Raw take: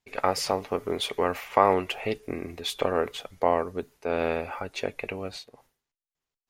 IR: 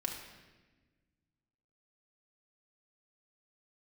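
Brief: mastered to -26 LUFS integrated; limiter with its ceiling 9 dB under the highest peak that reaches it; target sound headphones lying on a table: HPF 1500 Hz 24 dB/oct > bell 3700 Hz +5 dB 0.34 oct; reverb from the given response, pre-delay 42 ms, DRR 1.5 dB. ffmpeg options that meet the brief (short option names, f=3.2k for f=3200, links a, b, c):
-filter_complex "[0:a]alimiter=limit=-14dB:level=0:latency=1,asplit=2[a][b];[1:a]atrim=start_sample=2205,adelay=42[c];[b][c]afir=irnorm=-1:irlink=0,volume=-3.5dB[d];[a][d]amix=inputs=2:normalize=0,highpass=f=1.5k:w=0.5412,highpass=f=1.5k:w=1.3066,equalizer=f=3.7k:t=o:w=0.34:g=5,volume=7dB"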